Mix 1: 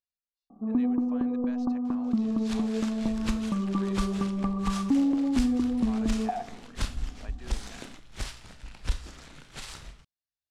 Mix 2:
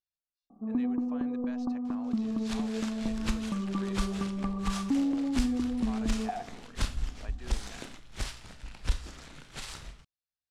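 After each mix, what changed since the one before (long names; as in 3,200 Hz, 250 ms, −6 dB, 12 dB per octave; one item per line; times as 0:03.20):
first sound −4.0 dB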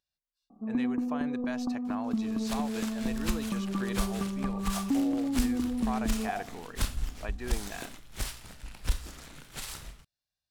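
speech +10.0 dB
master: remove low-pass filter 7,000 Hz 12 dB per octave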